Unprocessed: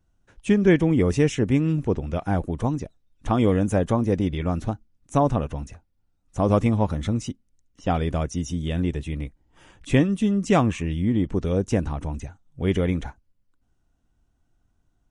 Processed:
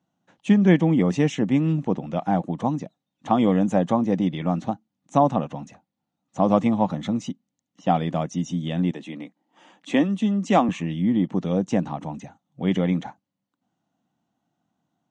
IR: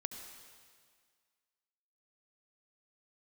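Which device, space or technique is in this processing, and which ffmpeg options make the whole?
television speaker: -filter_complex "[0:a]highpass=f=160:w=0.5412,highpass=f=160:w=1.3066,equalizer=f=180:t=q:w=4:g=4,equalizer=f=410:t=q:w=4:g=-9,equalizer=f=780:t=q:w=4:g=5,equalizer=f=1.5k:t=q:w=4:g=-6,equalizer=f=2.4k:t=q:w=4:g=-4,equalizer=f=5.2k:t=q:w=4:g=-7,lowpass=f=6.5k:w=0.5412,lowpass=f=6.5k:w=1.3066,asettb=1/sr,asplit=3[a][b][c];[a]atrim=end=8.914[d];[b]atrim=start=8.91:end=10.69,asetpts=PTS-STARTPTS,afade=t=in:d=0.004:c=qsin,afade=t=out:st=1.776:d=0.004:c=qsin,highpass=f=210:w=0.5412,highpass=f=210:w=1.3066[e];[c]atrim=start=10.686[f];[d][e]acrossfade=d=0.004:c1=hsin:c2=qsin[g];[g][f]acrossfade=d=0.004:c1=qsin:c2=hsin,volume=2dB"

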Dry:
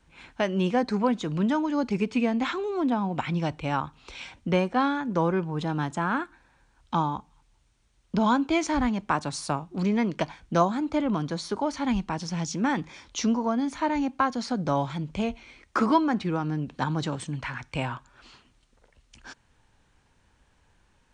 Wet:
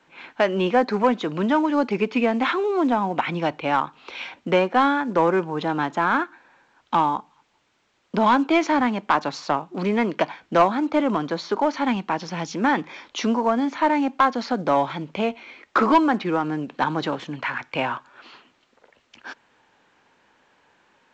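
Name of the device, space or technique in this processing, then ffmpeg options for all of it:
telephone: -af "highpass=310,lowpass=3.3k,asoftclip=type=tanh:threshold=-16.5dB,volume=8.5dB" -ar 16000 -c:a pcm_alaw

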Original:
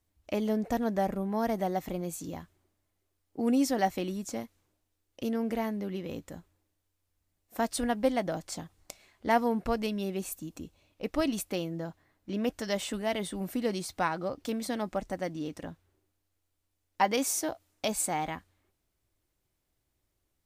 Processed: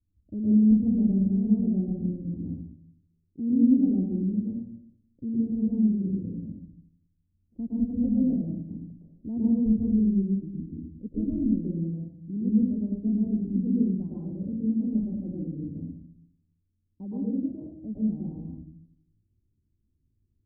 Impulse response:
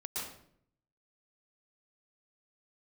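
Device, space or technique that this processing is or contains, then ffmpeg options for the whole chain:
next room: -filter_complex "[0:a]lowpass=f=260:w=0.5412,lowpass=f=260:w=1.3066[a];[1:a]atrim=start_sample=2205[b];[a][b]afir=irnorm=-1:irlink=0,volume=8dB"

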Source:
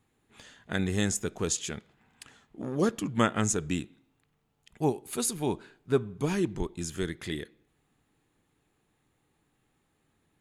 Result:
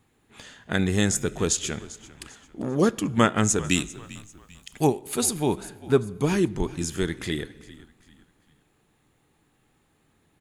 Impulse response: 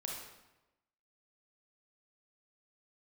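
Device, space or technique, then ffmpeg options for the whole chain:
compressed reverb return: -filter_complex "[0:a]asplit=2[a][b];[1:a]atrim=start_sample=2205[c];[b][c]afir=irnorm=-1:irlink=0,acompressor=threshold=-37dB:ratio=6,volume=-11dB[d];[a][d]amix=inputs=2:normalize=0,asettb=1/sr,asplit=3[e][f][g];[e]atrim=end=3.644[h];[f]atrim=start=3.64:end=4.87,asetpts=PTS-STARTPTS,afade=t=in:d=0.004:c=qsin,afade=t=out:st=1.226:d=0.004:c=qsin,highshelf=f=2.1k:g=12[i];[g]atrim=start=4.866[j];[h][i]acrossfade=d=0.004:c1=hsin:c2=qsin[k];[k][j]acrossfade=d=0.004:c1=qsin:c2=hsin,asplit=4[l][m][n][o];[m]adelay=395,afreqshift=-53,volume=-18.5dB[p];[n]adelay=790,afreqshift=-106,volume=-26.9dB[q];[o]adelay=1185,afreqshift=-159,volume=-35.3dB[r];[l][p][q][r]amix=inputs=4:normalize=0,volume=5dB"

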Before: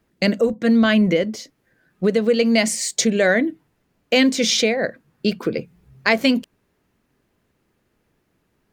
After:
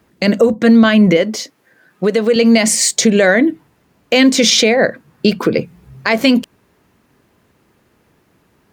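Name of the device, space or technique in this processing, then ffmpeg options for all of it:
mastering chain: -filter_complex "[0:a]highpass=53,equalizer=f=1k:t=o:w=0.68:g=3,acompressor=threshold=-19dB:ratio=2,alimiter=level_in=12dB:limit=-1dB:release=50:level=0:latency=1,asettb=1/sr,asplit=3[a][b][c];[a]atrim=end=1.174[d];[b]atrim=start=1.17:end=2.36,asetpts=PTS-STARTPTS,afade=t=in:d=0.004:c=qsin,afade=t=out:st=1.186:d=0.004:c=qsin,highpass=f=320:p=1[e];[c]atrim=start=2.356[f];[d][e]acrossfade=d=0.004:c1=hsin:c2=qsin[g];[g][f]acrossfade=d=0.004:c1=qsin:c2=hsin,volume=-1dB"

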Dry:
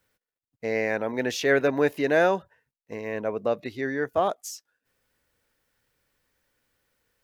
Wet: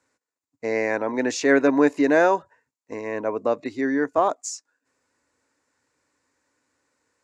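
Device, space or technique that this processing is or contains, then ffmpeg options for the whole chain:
car door speaker: -af "highpass=110,equalizer=f=130:t=q:w=4:g=-5,equalizer=f=190:t=q:w=4:g=-8,equalizer=f=280:t=q:w=4:g=9,equalizer=f=1k:t=q:w=4:g=7,equalizer=f=3.2k:t=q:w=4:g=-10,equalizer=f=7.2k:t=q:w=4:g=9,lowpass=f=8.3k:w=0.5412,lowpass=f=8.3k:w=1.3066,volume=2dB"

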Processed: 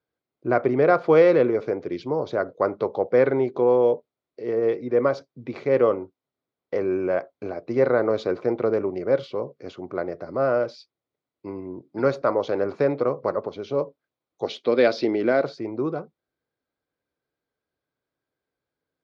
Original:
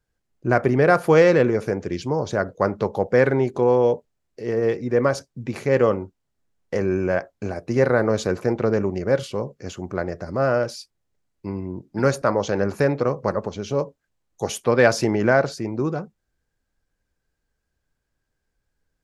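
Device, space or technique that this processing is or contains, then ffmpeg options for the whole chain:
kitchen radio: -filter_complex "[0:a]asettb=1/sr,asplit=3[a][b][c];[a]atrim=end=14.464[d];[b]atrim=start=14.46:end=15.43,asetpts=PTS-STARTPTS,afade=t=in:d=0.004:c=qsin,afade=t=out:st=0.966:d=0.004:c=qsin,equalizer=f=125:t=o:w=1:g=-8,equalizer=f=250:t=o:w=1:g=4,equalizer=f=1k:t=o:w=1:g=-7,equalizer=f=4k:t=o:w=1:g=10,equalizer=f=8k:t=o:w=1:g=-8[e];[c]atrim=start=15.426[f];[d][e]acrossfade=d=0.004:c1=hsin:c2=qsin[g];[g][f]acrossfade=d=0.004:c1=qsin:c2=hsin,highpass=200,equalizer=f=200:t=q:w=4:g=-9,equalizer=f=860:t=q:w=4:g=-4,equalizer=f=1.7k:t=q:w=4:g=-9,equalizer=f=2.8k:t=q:w=4:g=-8,lowpass=f=3.9k:w=0.5412,lowpass=f=3.9k:w=1.3066"

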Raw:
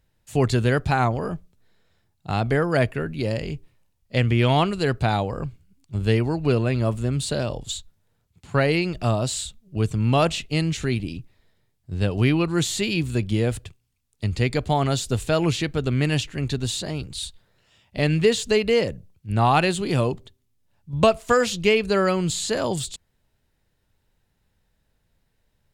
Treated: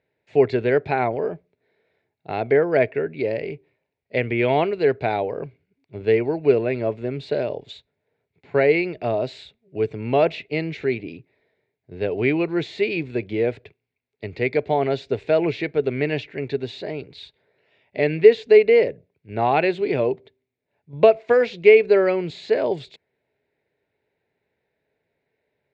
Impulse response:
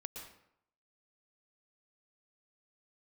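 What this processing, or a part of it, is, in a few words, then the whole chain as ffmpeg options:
kitchen radio: -af "highpass=190,equalizer=f=200:t=q:w=4:g=-7,equalizer=f=420:t=q:w=4:g=10,equalizer=f=630:t=q:w=4:g=5,equalizer=f=1.2k:t=q:w=4:g=-10,equalizer=f=2.2k:t=q:w=4:g=8,equalizer=f=3.1k:t=q:w=4:g=-8,lowpass=f=3.5k:w=0.5412,lowpass=f=3.5k:w=1.3066,volume=-1dB"

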